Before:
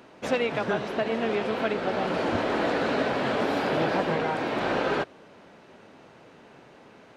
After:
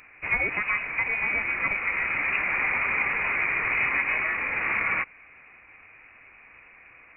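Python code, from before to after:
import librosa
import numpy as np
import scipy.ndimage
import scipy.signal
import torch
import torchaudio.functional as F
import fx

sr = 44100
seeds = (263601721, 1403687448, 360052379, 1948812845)

y = fx.freq_invert(x, sr, carrier_hz=2700)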